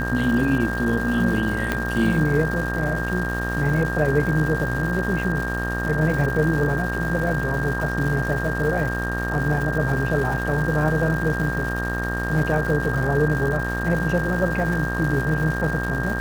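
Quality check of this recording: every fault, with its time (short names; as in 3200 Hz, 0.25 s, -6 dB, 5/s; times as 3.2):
buzz 60 Hz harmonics 31 -27 dBFS
crackle 420/s -29 dBFS
tone 1600 Hz -27 dBFS
1.72 pop -8 dBFS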